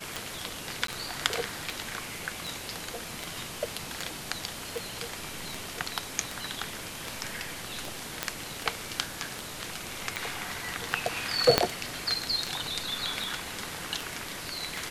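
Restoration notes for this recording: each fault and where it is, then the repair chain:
scratch tick 78 rpm
0:00.87–0:00.88: drop-out 13 ms
0:08.23: click −9 dBFS
0:11.58: click −3 dBFS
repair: click removal
repair the gap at 0:00.87, 13 ms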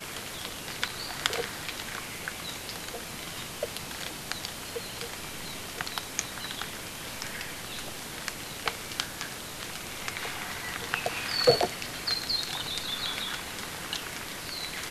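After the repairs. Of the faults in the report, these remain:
0:08.23: click
0:11.58: click

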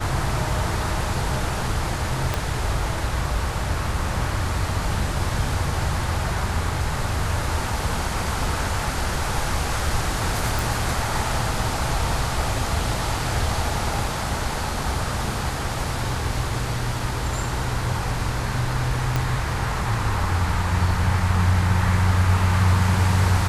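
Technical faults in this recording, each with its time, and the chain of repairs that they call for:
0:02.34: click
0:10.59: click
0:19.16: click −8 dBFS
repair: click removal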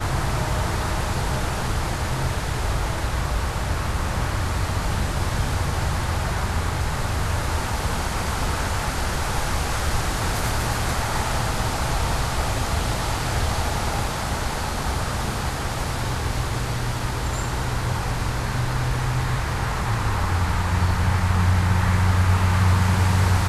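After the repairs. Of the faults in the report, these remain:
0:02.34: click
0:19.16: click

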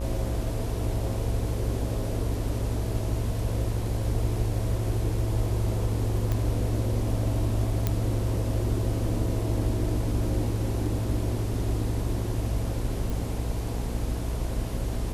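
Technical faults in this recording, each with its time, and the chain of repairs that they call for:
mains buzz 60 Hz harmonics 18 −32 dBFS
0:06.32: click −16 dBFS
0:07.87: click −11 dBFS
0:13.10: click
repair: click removal
hum removal 60 Hz, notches 18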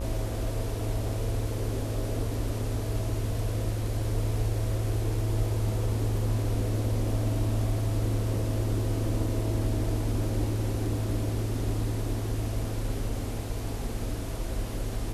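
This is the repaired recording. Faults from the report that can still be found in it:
none of them is left

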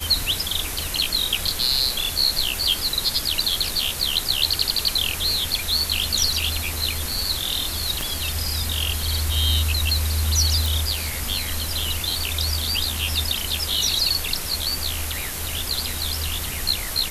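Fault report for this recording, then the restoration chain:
0:08.01: click −11 dBFS
0:10.66: click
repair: click removal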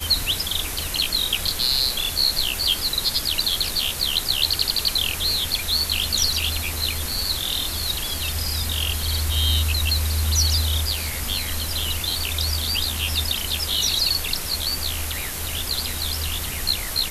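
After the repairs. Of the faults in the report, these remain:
0:08.01: click

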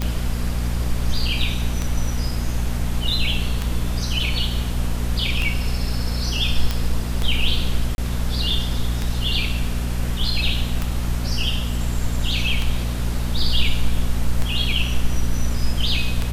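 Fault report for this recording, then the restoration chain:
mains hum 60 Hz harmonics 4 −24 dBFS
scratch tick 33 1/3 rpm −9 dBFS
0:06.71: click −8 dBFS
0:07.95–0:07.98: drop-out 31 ms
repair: click removal
hum removal 60 Hz, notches 4
repair the gap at 0:07.95, 31 ms

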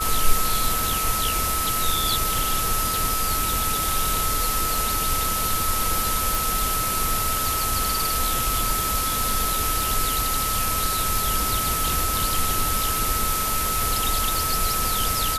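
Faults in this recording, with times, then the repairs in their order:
surface crackle 37 per second −28 dBFS
whistle 1,300 Hz −26 dBFS
0:06.35: click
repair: click removal
notch filter 1,300 Hz, Q 30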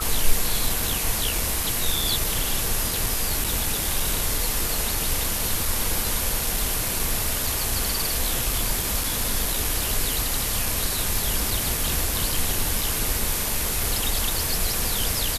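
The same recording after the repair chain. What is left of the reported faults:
none of them is left

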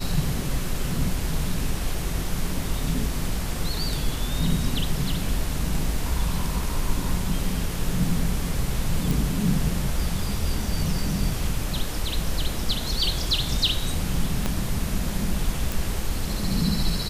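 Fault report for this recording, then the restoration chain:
0:09.11: click
0:14.46: click −10 dBFS
0:15.72: click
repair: click removal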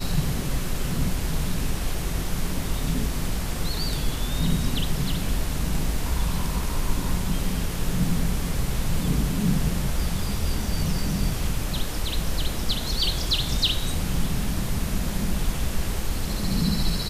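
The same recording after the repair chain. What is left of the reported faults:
0:14.46: click

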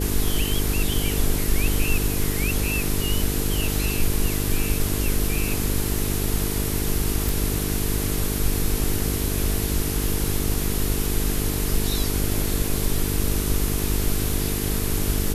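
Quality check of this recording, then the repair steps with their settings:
mains buzz 50 Hz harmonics 9 −27 dBFS
0:07.29: click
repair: click removal
hum removal 50 Hz, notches 9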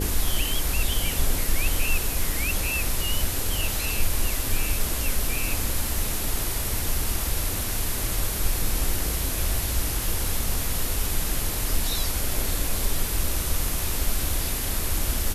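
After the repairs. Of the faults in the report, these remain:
none of them is left

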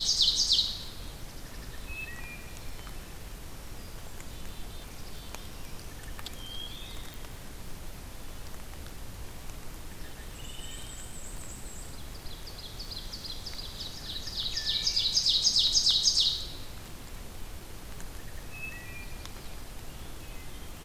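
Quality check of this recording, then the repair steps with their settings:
surface crackle 37 per second −39 dBFS
0:07.14: click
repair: click removal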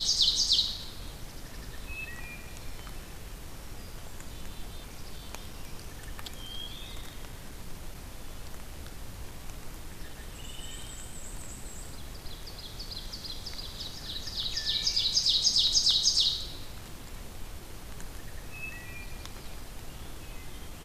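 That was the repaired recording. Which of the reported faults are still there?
none of them is left

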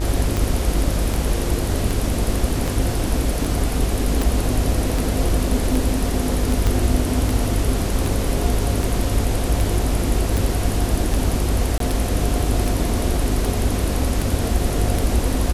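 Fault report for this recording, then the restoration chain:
mains buzz 50 Hz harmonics 39 −24 dBFS
scratch tick 78 rpm
0:04.22: click
0:06.67: click
0:11.78–0:11.80: drop-out 23 ms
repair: click removal
hum removal 50 Hz, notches 39
repair the gap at 0:11.78, 23 ms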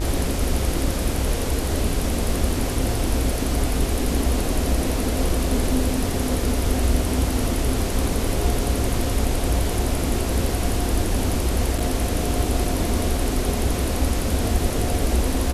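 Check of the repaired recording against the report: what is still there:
0:06.67: click

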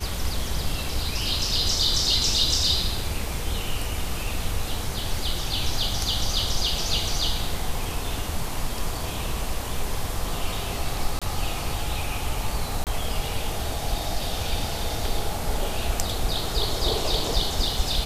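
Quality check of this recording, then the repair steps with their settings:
0:11.19–0:11.22: drop-out 26 ms
0:12.84–0:12.87: drop-out 28 ms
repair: repair the gap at 0:11.19, 26 ms
repair the gap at 0:12.84, 28 ms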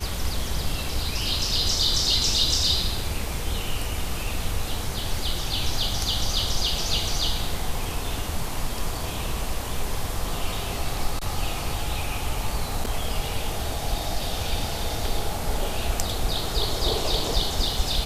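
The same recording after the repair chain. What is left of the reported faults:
none of them is left

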